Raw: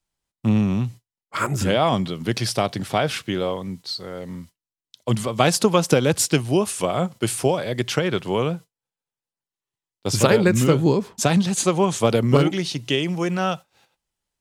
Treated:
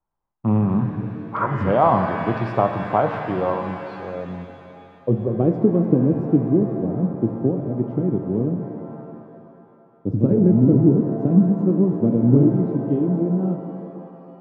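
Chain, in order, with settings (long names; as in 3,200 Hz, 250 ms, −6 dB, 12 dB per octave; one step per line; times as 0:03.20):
low-pass filter sweep 990 Hz → 280 Hz, 0:03.62–0:05.88
reverb with rising layers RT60 2.5 s, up +7 semitones, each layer −8 dB, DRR 5.5 dB
level −1 dB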